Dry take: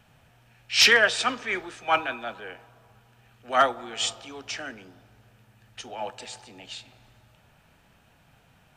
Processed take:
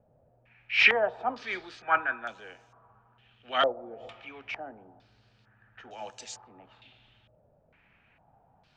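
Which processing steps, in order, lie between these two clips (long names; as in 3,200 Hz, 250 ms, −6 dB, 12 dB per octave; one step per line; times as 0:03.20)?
low-pass on a step sequencer 2.2 Hz 570–6,400 Hz
level −7.5 dB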